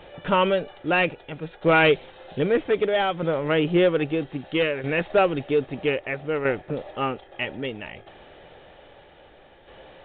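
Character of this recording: tremolo saw down 0.62 Hz, depth 55%; µ-law

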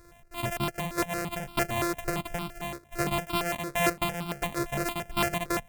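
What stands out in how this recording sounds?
a buzz of ramps at a fixed pitch in blocks of 128 samples; notches that jump at a steady rate 8.8 Hz 810–1800 Hz

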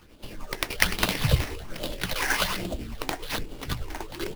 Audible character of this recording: phasing stages 8, 1.2 Hz, lowest notch 150–1800 Hz; tremolo triangle 10 Hz, depth 55%; aliases and images of a low sample rate 7.6 kHz, jitter 20%

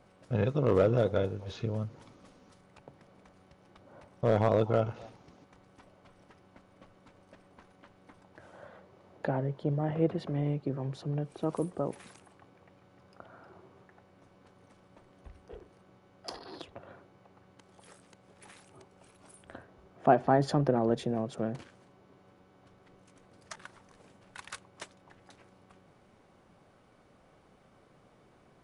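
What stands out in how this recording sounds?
noise floor -63 dBFS; spectral tilt -6.0 dB/octave

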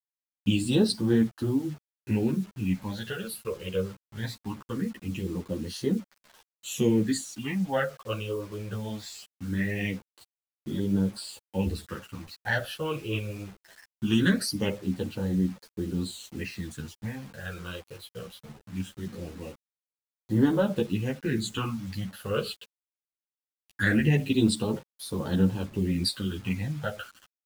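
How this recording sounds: phasing stages 8, 0.21 Hz, lowest notch 240–2500 Hz; a quantiser's noise floor 8-bit, dither none; a shimmering, thickened sound

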